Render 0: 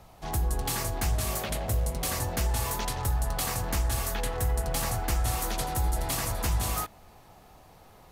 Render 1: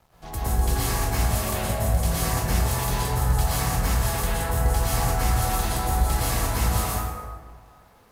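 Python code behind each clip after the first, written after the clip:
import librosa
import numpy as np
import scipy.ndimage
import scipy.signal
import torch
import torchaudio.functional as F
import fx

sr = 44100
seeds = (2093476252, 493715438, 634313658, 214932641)

y = np.sign(x) * np.maximum(np.abs(x) - 10.0 ** (-53.5 / 20.0), 0.0)
y = fx.rev_plate(y, sr, seeds[0], rt60_s=1.6, hf_ratio=0.5, predelay_ms=100, drr_db=-8.5)
y = y * librosa.db_to_amplitude(-3.0)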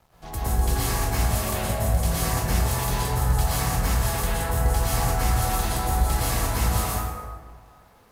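y = x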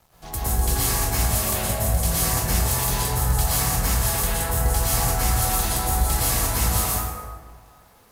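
y = fx.high_shelf(x, sr, hz=4400.0, db=8.5)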